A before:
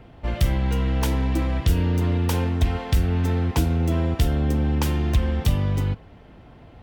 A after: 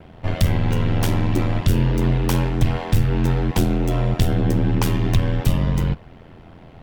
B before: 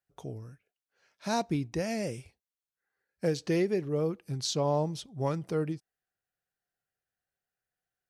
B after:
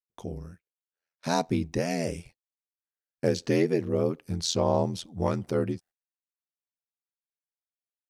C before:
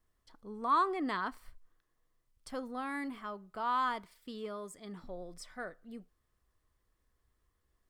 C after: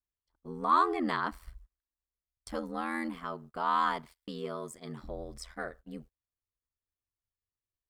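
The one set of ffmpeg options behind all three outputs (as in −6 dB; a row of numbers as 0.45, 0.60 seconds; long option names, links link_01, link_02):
-af "acontrast=63,aeval=exprs='val(0)*sin(2*PI*42*n/s)':channel_layout=same,agate=range=-26dB:threshold=-50dB:ratio=16:detection=peak"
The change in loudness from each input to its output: +2.5, +3.5, +3.5 LU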